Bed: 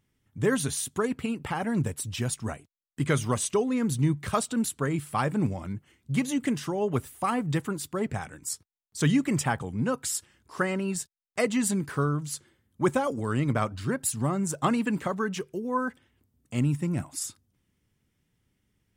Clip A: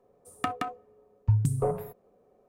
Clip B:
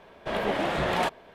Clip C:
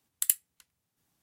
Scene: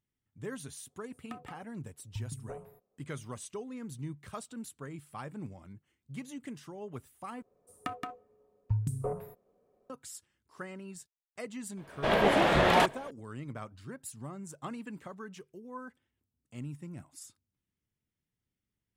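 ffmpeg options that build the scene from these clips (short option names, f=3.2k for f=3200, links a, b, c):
-filter_complex "[1:a]asplit=2[a][b];[0:a]volume=-15.5dB[c];[b]bandreject=f=810:w=12[d];[2:a]dynaudnorm=f=110:g=3:m=9dB[e];[c]asplit=2[f][g];[f]atrim=end=7.424[h];[d]atrim=end=2.48,asetpts=PTS-STARTPTS,volume=-7dB[i];[g]atrim=start=9.896[j];[a]atrim=end=2.48,asetpts=PTS-STARTPTS,volume=-16.5dB,afade=t=in:d=0.004:c=hsin,afade=t=out:st=2.476:d=0.004:c=hsin,adelay=870[k];[e]atrim=end=1.34,asetpts=PTS-STARTPTS,volume=-6dB,afade=t=in:d=0.004:c=hsin,afade=t=out:st=1.336:d=0.004:c=hsin,adelay=11770[l];[h][i]acrossfade=d=0.004:c1=hsin:c2=hsin[m];[m][j]acrossfade=d=0.004:c1=hsin:c2=hsin[n];[n][k][l]amix=inputs=3:normalize=0"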